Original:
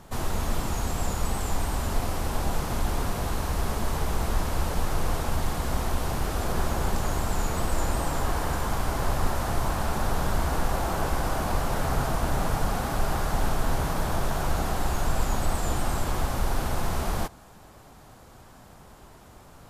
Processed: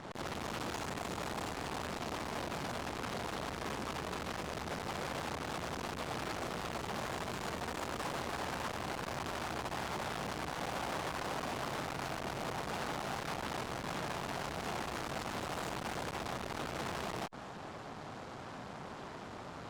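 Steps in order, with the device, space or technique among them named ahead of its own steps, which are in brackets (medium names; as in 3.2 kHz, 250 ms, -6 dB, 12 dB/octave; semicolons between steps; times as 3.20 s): valve radio (band-pass 130–4500 Hz; valve stage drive 45 dB, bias 0.8; transformer saturation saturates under 490 Hz); trim +11 dB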